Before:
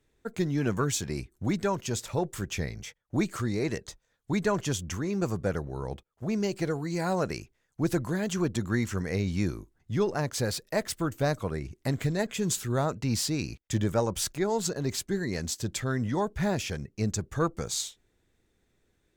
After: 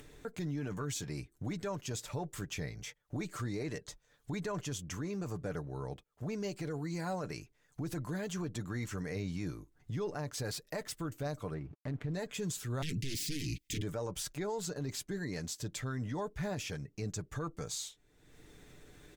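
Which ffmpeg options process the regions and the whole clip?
ffmpeg -i in.wav -filter_complex "[0:a]asettb=1/sr,asplit=3[link_01][link_02][link_03];[link_01]atrim=end=11.544[link_04];[link_02]atrim=start=11.54:end=12.14,asetpts=PTS-STARTPTS,afade=type=in:duration=0.004:curve=qsin,afade=type=out:start_time=0.596:duration=0.004:curve=qsin,adynamicsmooth=sensitivity=2.5:basefreq=1200,aeval=exprs='sgn(val(0))*max(abs(val(0))-0.00119,0)':channel_layout=same[link_05];[link_03]atrim=start=12.136[link_06];[link_04][link_05]acrossfade=duration=0.004:curve1=hsin:curve2=qsin[link_07];[link_07][link_06]acrossfade=duration=0.004:curve1=qsin:curve2=hsin,asettb=1/sr,asplit=3[link_08][link_09][link_10];[link_08]atrim=end=12.824[link_11];[link_09]atrim=start=12.82:end=13.82,asetpts=PTS-STARTPTS,afade=type=in:duration=0.004:curve=qsin,afade=type=out:start_time=0.996:duration=0.004:curve=qsin,aeval=exprs='0.15*sin(PI/2*5.01*val(0)/0.15)':channel_layout=same,asuperstop=centerf=860:order=8:qfactor=0.5[link_12];[link_10]atrim=start=13.816[link_13];[link_11][link_12]acrossfade=duration=0.004:curve1=hsin:curve2=qsin[link_14];[link_14][link_13]acrossfade=duration=0.004:curve1=qsin:curve2=hsin,aecho=1:1:6.8:0.44,acompressor=mode=upward:threshold=-29dB:ratio=2.5,alimiter=limit=-22dB:level=0:latency=1:release=20,volume=-7.5dB" out.wav

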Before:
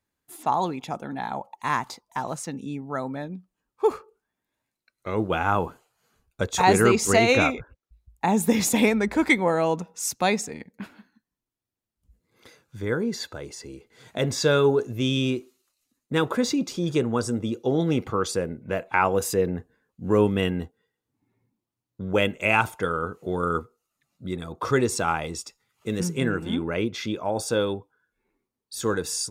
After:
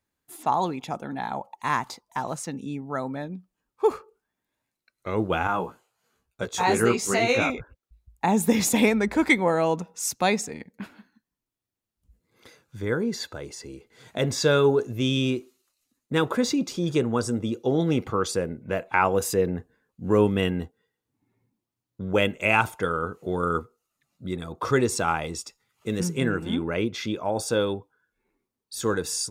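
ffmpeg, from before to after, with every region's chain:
ffmpeg -i in.wav -filter_complex "[0:a]asettb=1/sr,asplit=3[link_01][link_02][link_03];[link_01]atrim=end=5.474[link_04];[link_02]atrim=start=5.47:end=7.5,asetpts=PTS-STARTPTS,afade=type=in:duration=0.004:curve=qsin,afade=type=out:start_time=2.026:duration=0.004:curve=qsin,lowshelf=frequency=82:gain=-10.5,flanger=delay=15.5:depth=2.6:speed=1.2[link_05];[link_03]atrim=start=7.496[link_06];[link_04][link_05]acrossfade=duration=0.004:curve1=hsin:curve2=qsin[link_07];[link_07][link_06]acrossfade=duration=0.004:curve1=qsin:curve2=hsin" out.wav

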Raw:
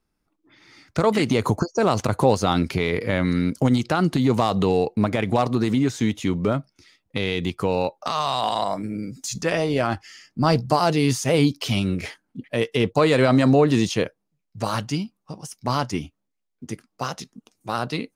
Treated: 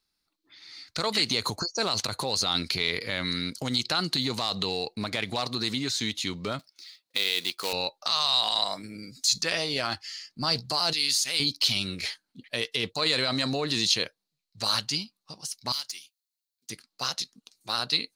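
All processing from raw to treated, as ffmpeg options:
ffmpeg -i in.wav -filter_complex "[0:a]asettb=1/sr,asplit=3[link_01][link_02][link_03];[link_01]atrim=end=6.594[link_04];[link_02]atrim=start=6.59:end=7.73,asetpts=PTS-STARTPTS,afade=type=in:duration=0.004:curve=qsin,afade=type=out:start_time=1.136:duration=0.004:curve=qsin,highpass=320,acrusher=bits=3:mode=log:mix=0:aa=0.000001[link_05];[link_03]atrim=start=7.726[link_06];[link_04][link_05]acrossfade=duration=0.004:curve1=hsin:curve2=qsin[link_07];[link_07][link_06]acrossfade=duration=0.004:curve1=qsin:curve2=hsin,asettb=1/sr,asplit=3[link_08][link_09][link_10];[link_08]atrim=end=10.934[link_11];[link_09]atrim=start=10.93:end=11.4,asetpts=PTS-STARTPTS,afade=type=in:duration=0.004:curve=qsin,afade=type=out:start_time=0.466:duration=0.004:curve=qsin,highpass=300,equalizer=frequency=540:width_type=o:width=2.2:gain=-14.5,bandreject=frequency=6000:width=27[link_12];[link_10]atrim=start=11.396[link_13];[link_11][link_12]acrossfade=duration=0.004:curve1=hsin:curve2=qsin[link_14];[link_14][link_13]acrossfade=duration=0.004:curve1=qsin:curve2=hsin,asettb=1/sr,asplit=3[link_15][link_16][link_17];[link_15]atrim=end=15.724[link_18];[link_16]atrim=start=15.72:end=16.7,asetpts=PTS-STARTPTS,afade=type=in:duration=0.004:curve=qsin,afade=type=out:start_time=0.976:duration=0.004:curve=qsin,aderivative,aeval=exprs='clip(val(0),-1,0.015)':channel_layout=same[link_19];[link_17]atrim=start=16.696[link_20];[link_18][link_19]acrossfade=duration=0.004:curve1=hsin:curve2=qsin[link_21];[link_21][link_20]acrossfade=duration=0.004:curve1=qsin:curve2=hsin,equalizer=frequency=4200:width_type=o:width=0.42:gain=14,alimiter=limit=-9.5dB:level=0:latency=1:release=25,tiltshelf=frequency=1200:gain=-7.5,volume=-5.5dB" out.wav

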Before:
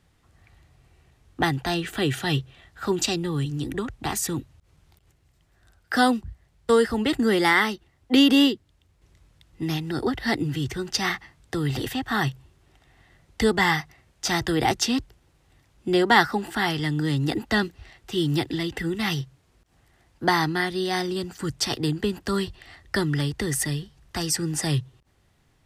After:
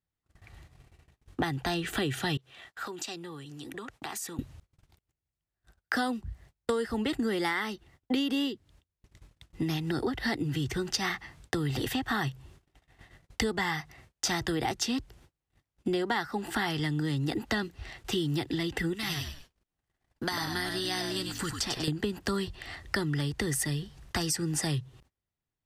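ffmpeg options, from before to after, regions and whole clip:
ffmpeg -i in.wav -filter_complex "[0:a]asettb=1/sr,asplit=3[link_01][link_02][link_03];[link_01]atrim=end=2.374[link_04];[link_02]atrim=start=2.37:end=4.39,asetpts=PTS-STARTPTS,afade=type=in:duration=0.004:curve=qsin,afade=type=out:start_time=2.016:duration=0.004:curve=qsin,acompressor=threshold=-36dB:ratio=8:attack=3.2:release=140:knee=1:detection=peak,highpass=frequency=630:poles=1,adynamicequalizer=threshold=0.00158:dfrequency=1800:dqfactor=0.7:tfrequency=1800:tqfactor=0.7:attack=5:release=100:ratio=0.375:range=2.5:mode=cutabove:tftype=highshelf[link_05];[link_03]atrim=start=4.386[link_06];[link_04][link_05]acrossfade=duration=0.004:curve1=hsin:curve2=qsin[link_07];[link_07][link_06]acrossfade=duration=0.004:curve1=qsin:curve2=hsin,asettb=1/sr,asplit=3[link_08][link_09][link_10];[link_08]atrim=end=18.934[link_11];[link_09]atrim=start=18.93:end=21.88,asetpts=PTS-STARTPTS,afade=type=in:duration=0.004:curve=qsin,afade=type=out:start_time=2.946:duration=0.004:curve=qsin,acrossover=split=1200|4100[link_12][link_13][link_14];[link_12]acompressor=threshold=-40dB:ratio=4[link_15];[link_13]acompressor=threshold=-39dB:ratio=4[link_16];[link_14]acompressor=threshold=-38dB:ratio=4[link_17];[link_15][link_16][link_17]amix=inputs=3:normalize=0,asplit=5[link_18][link_19][link_20][link_21][link_22];[link_19]adelay=97,afreqshift=-66,volume=-6dB[link_23];[link_20]adelay=194,afreqshift=-132,volume=-16.2dB[link_24];[link_21]adelay=291,afreqshift=-198,volume=-26.3dB[link_25];[link_22]adelay=388,afreqshift=-264,volume=-36.5dB[link_26];[link_18][link_23][link_24][link_25][link_26]amix=inputs=5:normalize=0,atrim=end_sample=130095[link_27];[link_10]atrim=start=21.876[link_28];[link_11][link_27]acrossfade=duration=0.004:curve1=hsin:curve2=qsin[link_29];[link_29][link_28]acrossfade=duration=0.004:curve1=qsin:curve2=hsin,agate=range=-32dB:threshold=-55dB:ratio=16:detection=peak,acompressor=threshold=-33dB:ratio=6,volume=5dB" out.wav

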